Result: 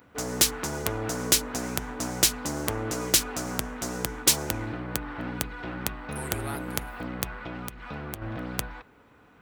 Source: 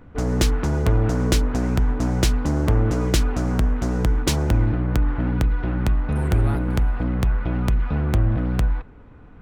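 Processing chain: high-pass 46 Hz; RIAA curve recording; 7.34–8.22 s: compression 12:1, threshold -29 dBFS, peak gain reduction 10.5 dB; trim -3 dB

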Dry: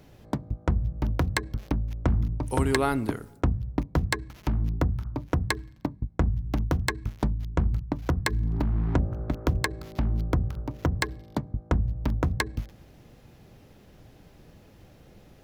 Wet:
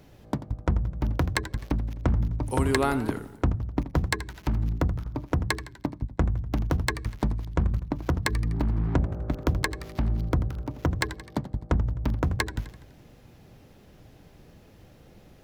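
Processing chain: modulated delay 84 ms, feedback 53%, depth 148 cents, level -14 dB

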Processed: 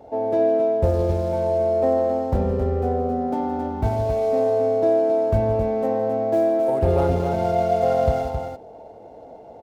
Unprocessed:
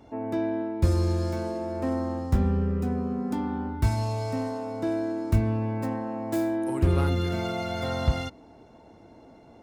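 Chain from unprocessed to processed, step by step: median filter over 15 samples; high-order bell 600 Hz +13 dB 1.2 oct; loudspeakers at several distances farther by 57 m -12 dB, 92 m -6 dB

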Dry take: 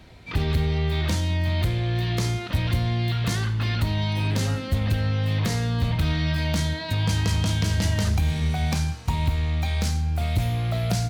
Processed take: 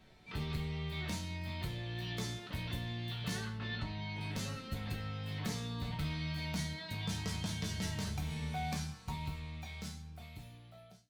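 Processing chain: fade out at the end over 2.22 s; 3.57–4.21 s: distance through air 110 m; chord resonator D3 major, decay 0.21 s; trim +1.5 dB

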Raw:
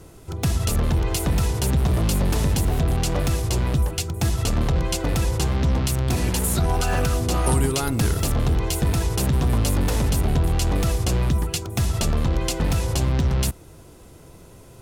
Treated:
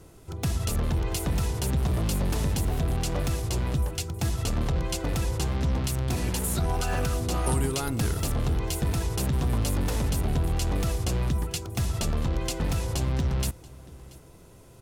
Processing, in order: delay 683 ms -21.5 dB; trim -5.5 dB

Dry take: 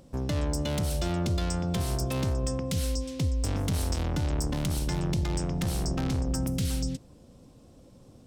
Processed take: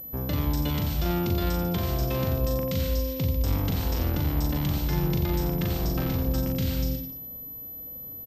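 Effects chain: reverse bouncing-ball echo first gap 40 ms, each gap 1.2×, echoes 5; class-D stage that switches slowly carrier 12 kHz

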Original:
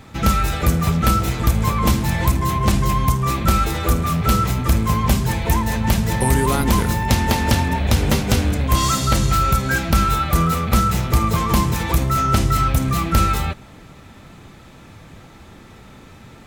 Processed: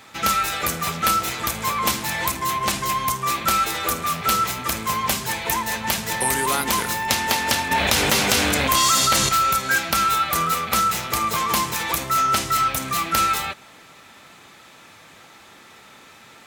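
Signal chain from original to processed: high-pass 1.2 kHz 6 dB/octave; 7.71–9.29 s: level flattener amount 70%; trim +3.5 dB

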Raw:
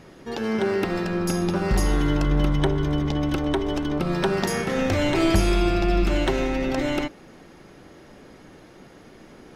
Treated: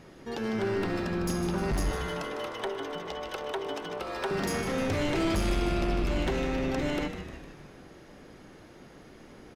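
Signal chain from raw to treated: 1.91–4.31 s: elliptic high-pass 410 Hz; saturation -19.5 dBFS, distortion -12 dB; frequency-shifting echo 153 ms, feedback 58%, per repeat -110 Hz, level -9 dB; trim -4 dB

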